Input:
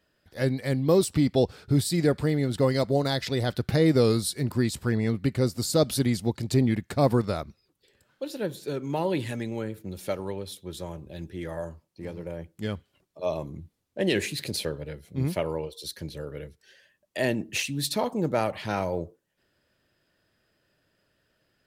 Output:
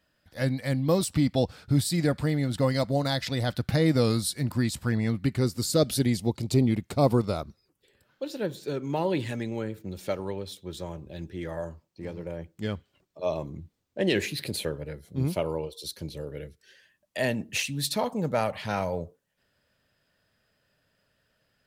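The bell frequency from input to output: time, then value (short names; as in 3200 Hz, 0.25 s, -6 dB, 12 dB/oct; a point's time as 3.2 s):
bell -11 dB 0.33 oct
5.13 s 400 Hz
6.35 s 1700 Hz
7.35 s 1700 Hz
8.24 s 11000 Hz
14.11 s 11000 Hz
15.28 s 1800 Hz
16.07 s 1800 Hz
17.21 s 340 Hz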